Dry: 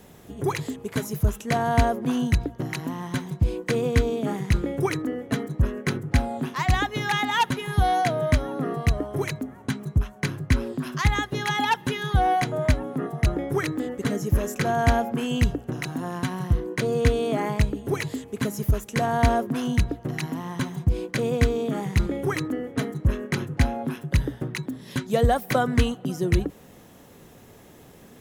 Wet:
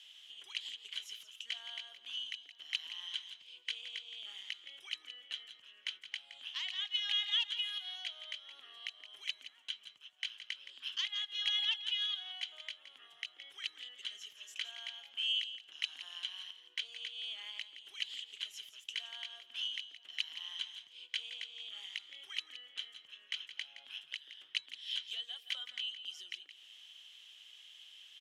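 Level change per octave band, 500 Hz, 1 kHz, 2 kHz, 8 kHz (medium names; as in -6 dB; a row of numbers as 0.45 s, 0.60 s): under -40 dB, -35.0 dB, -14.5 dB, -16.5 dB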